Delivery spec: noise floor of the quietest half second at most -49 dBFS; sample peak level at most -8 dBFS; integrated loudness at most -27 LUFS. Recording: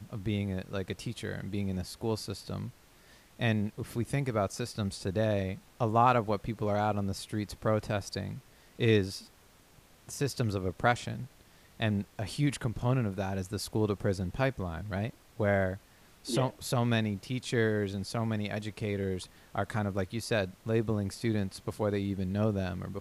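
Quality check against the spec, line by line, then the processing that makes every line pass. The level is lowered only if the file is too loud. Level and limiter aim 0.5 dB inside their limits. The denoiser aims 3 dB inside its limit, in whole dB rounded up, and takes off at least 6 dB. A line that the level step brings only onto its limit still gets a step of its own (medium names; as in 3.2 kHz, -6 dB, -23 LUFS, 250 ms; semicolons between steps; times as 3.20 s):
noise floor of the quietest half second -60 dBFS: pass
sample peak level -12.5 dBFS: pass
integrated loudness -32.5 LUFS: pass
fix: none needed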